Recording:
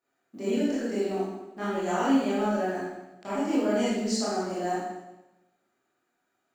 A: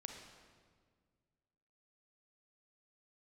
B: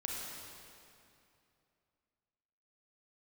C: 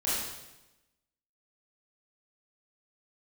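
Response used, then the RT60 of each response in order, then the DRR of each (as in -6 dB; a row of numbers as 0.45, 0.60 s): C; 1.8, 2.7, 1.0 s; 3.0, -3.0, -10.0 dB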